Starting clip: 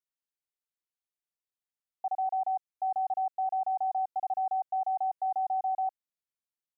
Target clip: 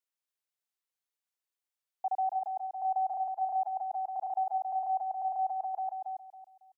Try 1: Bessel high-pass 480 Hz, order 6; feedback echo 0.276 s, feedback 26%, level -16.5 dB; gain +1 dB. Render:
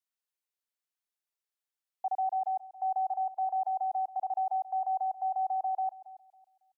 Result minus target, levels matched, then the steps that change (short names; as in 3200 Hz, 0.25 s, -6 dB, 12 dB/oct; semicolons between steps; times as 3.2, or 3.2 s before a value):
echo-to-direct -10.5 dB
change: feedback echo 0.276 s, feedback 26%, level -6 dB